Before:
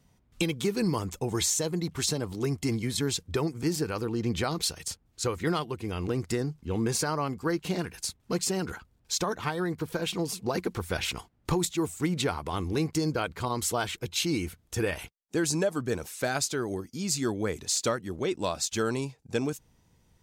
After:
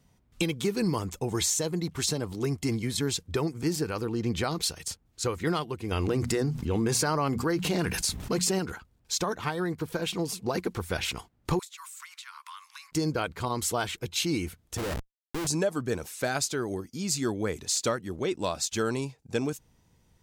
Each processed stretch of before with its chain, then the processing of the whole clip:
5.91–8.59 s: hum notches 60/120/180/240 Hz + level flattener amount 70%
11.59–12.92 s: steep high-pass 1 kHz 72 dB/octave + compression 10:1, threshold -40 dBFS
14.77–15.47 s: median filter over 15 samples + low-pass 3.6 kHz + Schmitt trigger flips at -40 dBFS
whole clip: none

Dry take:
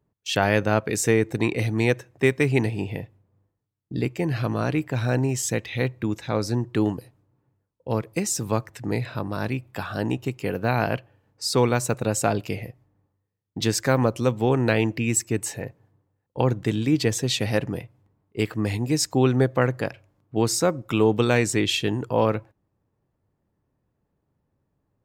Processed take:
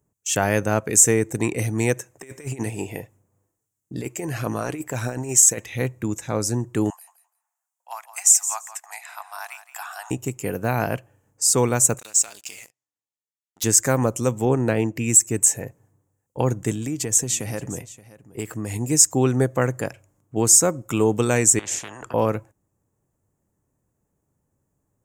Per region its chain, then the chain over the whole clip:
1.97–5.65 s: bass shelf 180 Hz -10 dB + compressor with a negative ratio -28 dBFS, ratio -0.5 + phaser 1.6 Hz, delay 3.3 ms, feedback 24%
6.90–10.11 s: Chebyshev high-pass 710 Hz, order 6 + feedback delay 169 ms, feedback 17%, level -13 dB
11.99–13.64 s: compression 4:1, threshold -27 dBFS + band-pass filter 4.1 kHz, Q 2.1 + waveshaping leveller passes 3
14.45–14.96 s: high-pass 170 Hz 6 dB/octave + tilt EQ -2 dB/octave + upward expansion, over -27 dBFS
16.72–18.76 s: compression 3:1, threshold -25 dBFS + delay 575 ms -18.5 dB
21.59–22.14 s: compression 3:1, threshold -26 dBFS + band-pass filter 240 Hz, Q 0.6 + spectrum-flattening compressor 10:1
whole clip: resonant high shelf 5.5 kHz +9.5 dB, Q 3; loudness maximiser +1 dB; trim -1 dB

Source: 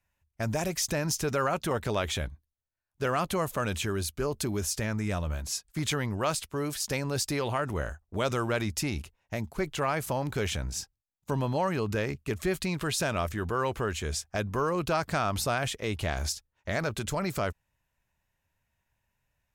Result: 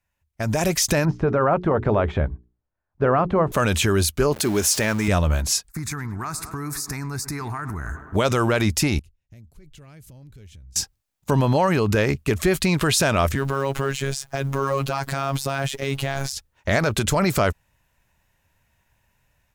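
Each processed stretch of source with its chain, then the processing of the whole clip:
1.05–3.52 s: de-esser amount 75% + low-pass 1.2 kHz + hum notches 60/120/180/240/300/360/420 Hz
4.33–5.08 s: jump at every zero crossing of -39 dBFS + high-pass 280 Hz 6 dB/octave
5.69–8.15 s: static phaser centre 1.3 kHz, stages 4 + tape echo 106 ms, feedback 81%, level -17 dB, low-pass 2.7 kHz + compression 10:1, threshold -37 dBFS
8.99–10.76 s: amplifier tone stack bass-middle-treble 10-0-1 + compression 5:1, threshold -55 dBFS
13.35–16.33 s: companding laws mixed up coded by mu + robot voice 137 Hz
whole clip: peak limiter -22 dBFS; level rider gain up to 12 dB

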